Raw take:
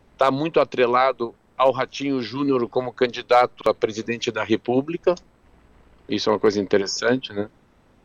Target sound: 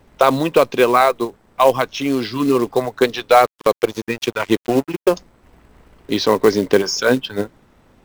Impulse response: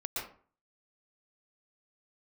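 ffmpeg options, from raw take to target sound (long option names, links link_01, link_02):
-filter_complex "[0:a]asettb=1/sr,asplit=3[link_01][link_02][link_03];[link_01]atrim=end=3.394[link_04];[link_02]atrim=start=3.39:end=5.12,asetpts=PTS-STARTPTS,afade=type=in:duration=0.004:curve=qsin,afade=type=out:start_time=1.726:duration=0.004:curve=qsin,aeval=exprs='sgn(val(0))*max(abs(val(0))-0.0188,0)':channel_layout=same[link_05];[link_03]atrim=start=5.116[link_06];[link_04][link_05]acrossfade=duration=0.004:curve1=hsin:curve2=qsin[link_07];[link_07][link_06]acrossfade=duration=0.004:curve1=qsin:curve2=hsin,acrusher=bits=5:mode=log:mix=0:aa=0.000001,volume=4.5dB"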